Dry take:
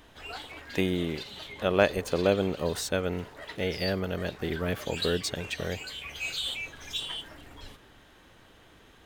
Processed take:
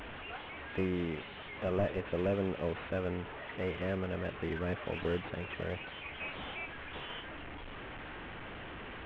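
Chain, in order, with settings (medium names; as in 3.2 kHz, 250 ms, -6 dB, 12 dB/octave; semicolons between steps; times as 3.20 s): one-bit delta coder 16 kbps, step -34.5 dBFS; in parallel at -8 dB: hard clipper -29 dBFS, distortion -7 dB; on the sum: trim -7 dB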